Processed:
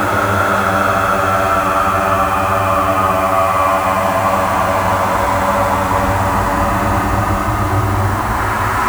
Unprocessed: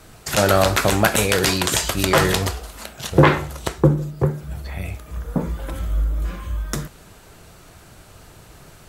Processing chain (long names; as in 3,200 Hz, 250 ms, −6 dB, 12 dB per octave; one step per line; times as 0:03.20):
running median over 25 samples
graphic EQ with 10 bands 125 Hz −5 dB, 250 Hz +4 dB, 500 Hz −8 dB, 1,000 Hz +12 dB, 2,000 Hz +9 dB, 4,000 Hz −6 dB, 8,000 Hz +6 dB
in parallel at +2 dB: compressor whose output falls as the input rises −20 dBFS, ratio −0.5
on the sum: extreme stretch with random phases 33×, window 0.10 s, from 0:00.50
on a send: flutter between parallel walls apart 8.7 metres, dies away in 0.29 s
on the sum: bit reduction 5 bits
level −2.5 dB